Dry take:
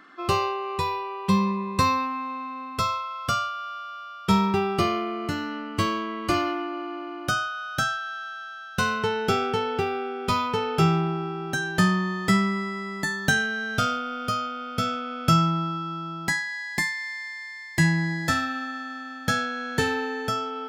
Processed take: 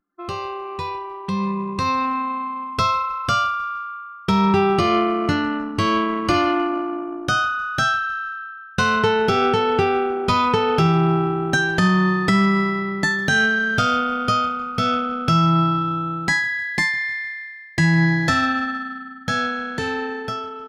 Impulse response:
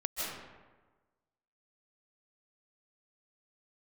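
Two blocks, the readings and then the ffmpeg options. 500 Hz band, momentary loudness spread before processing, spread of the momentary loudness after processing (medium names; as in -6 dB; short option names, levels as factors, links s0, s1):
+6.5 dB, 10 LU, 12 LU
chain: -filter_complex "[0:a]anlmdn=15.8,bandreject=f=7400:w=16,acrossover=split=7500[s0][s1];[s1]acompressor=threshold=0.00158:ratio=4:attack=1:release=60[s2];[s0][s2]amix=inputs=2:normalize=0,alimiter=limit=0.126:level=0:latency=1:release=167,dynaudnorm=f=550:g=7:m=3.16,asplit=2[s3][s4];[s4]asplit=3[s5][s6][s7];[s5]adelay=154,afreqshift=-31,volume=0.0794[s8];[s6]adelay=308,afreqshift=-62,volume=0.0327[s9];[s7]adelay=462,afreqshift=-93,volume=0.0133[s10];[s8][s9][s10]amix=inputs=3:normalize=0[s11];[s3][s11]amix=inputs=2:normalize=0"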